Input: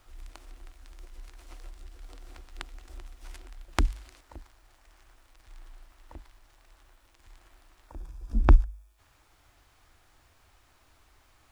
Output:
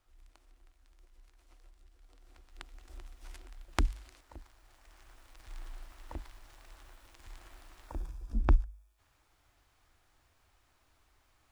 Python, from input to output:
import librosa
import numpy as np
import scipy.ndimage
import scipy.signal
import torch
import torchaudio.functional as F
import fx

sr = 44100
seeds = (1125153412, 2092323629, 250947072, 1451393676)

y = fx.gain(x, sr, db=fx.line((2.08, -14.5), (2.97, -4.0), (4.37, -4.0), (5.58, 4.0), (7.95, 4.0), (8.46, -7.5)))